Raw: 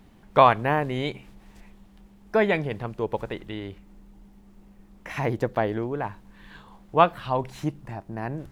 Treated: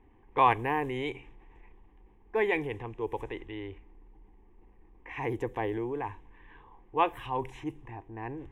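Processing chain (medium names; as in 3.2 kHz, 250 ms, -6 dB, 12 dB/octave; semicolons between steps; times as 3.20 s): static phaser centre 920 Hz, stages 8; level-controlled noise filter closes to 1.7 kHz, open at -25 dBFS; transient shaper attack -3 dB, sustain +3 dB; trim -2.5 dB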